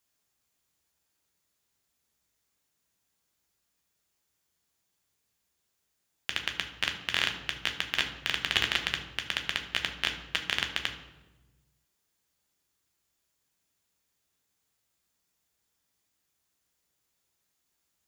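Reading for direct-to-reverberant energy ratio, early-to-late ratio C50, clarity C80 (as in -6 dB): 3.5 dB, 9.0 dB, 11.0 dB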